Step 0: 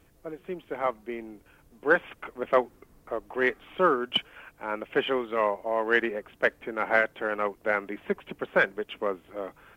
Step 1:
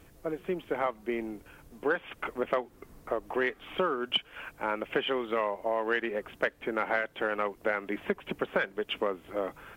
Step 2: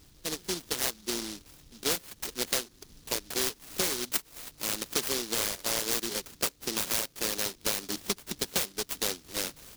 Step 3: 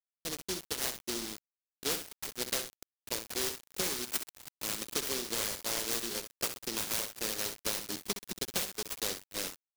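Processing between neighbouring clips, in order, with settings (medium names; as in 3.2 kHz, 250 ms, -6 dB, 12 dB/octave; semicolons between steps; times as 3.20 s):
dynamic bell 3.3 kHz, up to +4 dB, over -45 dBFS, Q 1.7; compression 6:1, threshold -31 dBFS, peak gain reduction 14.5 dB; trim +5 dB
delay time shaken by noise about 4.6 kHz, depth 0.42 ms; trim -1 dB
on a send: feedback delay 65 ms, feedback 46%, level -10.5 dB; on the sum: word length cut 6-bit, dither none; trim -4.5 dB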